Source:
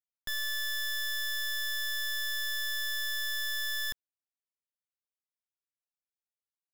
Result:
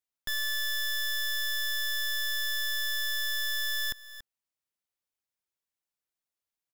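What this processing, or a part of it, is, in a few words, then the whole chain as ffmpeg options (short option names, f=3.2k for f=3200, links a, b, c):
ducked delay: -filter_complex "[0:a]asplit=3[a][b][c];[b]adelay=283,volume=-6dB[d];[c]apad=whole_len=309511[e];[d][e]sidechaincompress=threshold=-50dB:ratio=8:attack=16:release=504[f];[a][f]amix=inputs=2:normalize=0,volume=2.5dB"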